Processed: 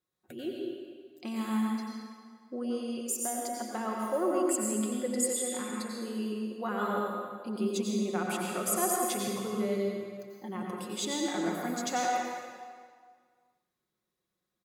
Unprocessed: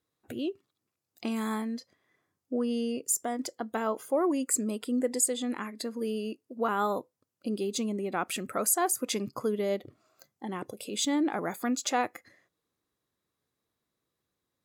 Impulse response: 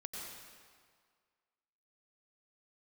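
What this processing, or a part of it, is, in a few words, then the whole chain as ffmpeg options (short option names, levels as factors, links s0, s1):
stairwell: -filter_complex "[0:a]aecho=1:1:5.5:0.53[s0];[1:a]atrim=start_sample=2205[s1];[s0][s1]afir=irnorm=-1:irlink=0,volume=0.891"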